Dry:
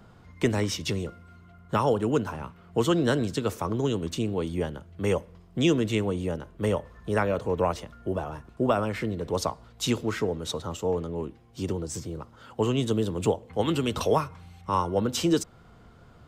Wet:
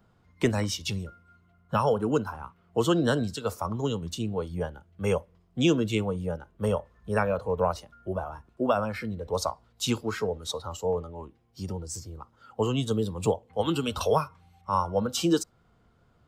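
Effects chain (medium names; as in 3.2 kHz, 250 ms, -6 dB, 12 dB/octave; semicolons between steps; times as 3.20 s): spectral noise reduction 11 dB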